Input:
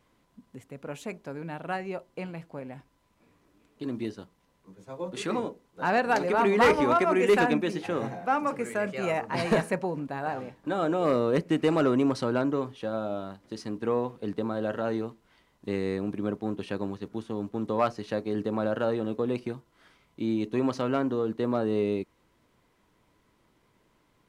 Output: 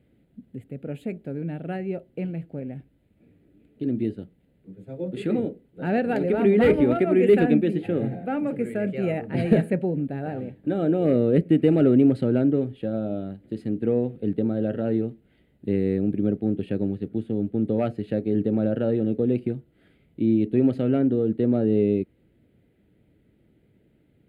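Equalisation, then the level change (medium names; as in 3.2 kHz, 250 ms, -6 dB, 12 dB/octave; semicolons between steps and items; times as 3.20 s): high-pass 54 Hz; tilt shelf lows +7.5 dB, about 840 Hz; static phaser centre 2.5 kHz, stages 4; +2.5 dB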